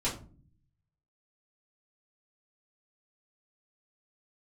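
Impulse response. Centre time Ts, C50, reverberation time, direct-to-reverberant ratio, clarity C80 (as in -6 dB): 25 ms, 9.0 dB, not exponential, -8.5 dB, 14.5 dB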